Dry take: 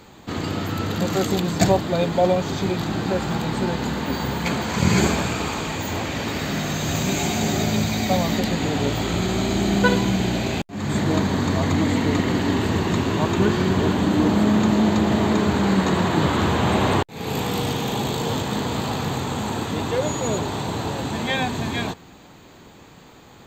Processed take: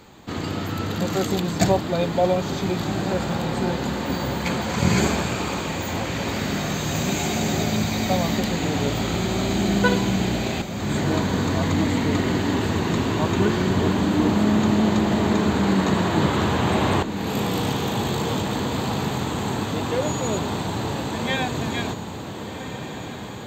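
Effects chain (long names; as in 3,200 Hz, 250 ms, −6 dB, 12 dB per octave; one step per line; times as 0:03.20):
feedback delay with all-pass diffusion 1,433 ms, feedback 73%, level −11 dB
level −1.5 dB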